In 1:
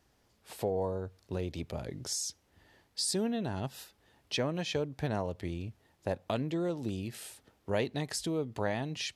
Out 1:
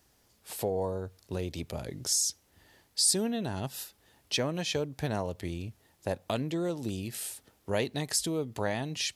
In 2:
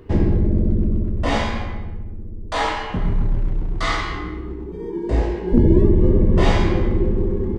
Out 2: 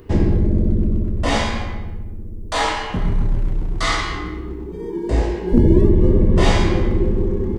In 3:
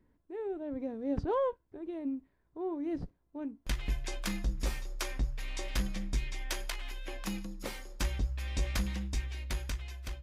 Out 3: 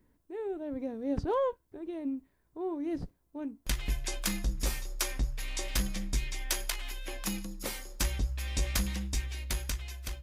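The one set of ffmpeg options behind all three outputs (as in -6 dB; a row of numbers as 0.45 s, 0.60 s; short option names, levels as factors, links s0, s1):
-af "highshelf=f=5700:g=11.5,volume=1.12"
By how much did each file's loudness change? +3.0 LU, +1.0 LU, +2.5 LU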